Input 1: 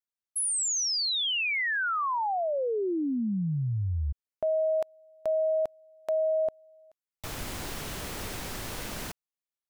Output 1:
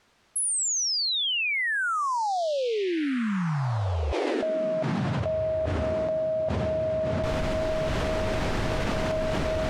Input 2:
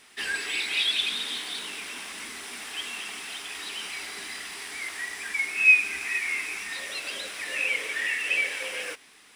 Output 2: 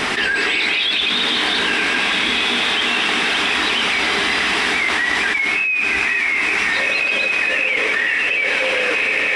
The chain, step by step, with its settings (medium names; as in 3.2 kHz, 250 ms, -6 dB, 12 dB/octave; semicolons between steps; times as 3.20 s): tape spacing loss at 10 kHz 22 dB; on a send: echo that smears into a reverb 1542 ms, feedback 47%, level -8 dB; on the sum: level flattener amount 100%